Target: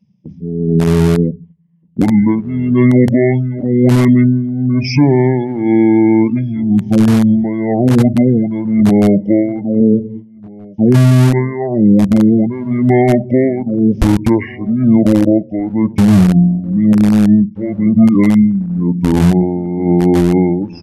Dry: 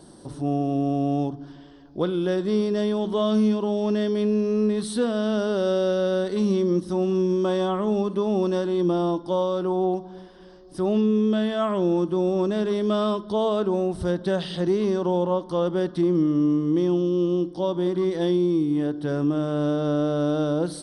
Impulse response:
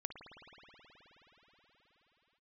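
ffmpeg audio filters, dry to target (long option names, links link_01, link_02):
-filter_complex "[0:a]afftdn=noise_reduction=28:noise_floor=-34,agate=range=-14dB:threshold=-41dB:ratio=16:detection=peak,bandreject=frequency=129.1:width_type=h:width=4,bandreject=frequency=258.2:width_type=h:width=4,tremolo=f=0.99:d=0.81,acrossover=split=200|960|4800[link_01][link_02][link_03][link_04];[link_01]acrusher=bits=4:mix=0:aa=0.000001[link_05];[link_05][link_02][link_03][link_04]amix=inputs=4:normalize=0,asetrate=26222,aresample=44100,atempo=1.68179,asplit=2[link_06][link_07];[link_07]adelay=1574,volume=-28dB,highshelf=frequency=4000:gain=-35.4[link_08];[link_06][link_08]amix=inputs=2:normalize=0,alimiter=level_in=20.5dB:limit=-1dB:release=50:level=0:latency=1,volume=-1dB"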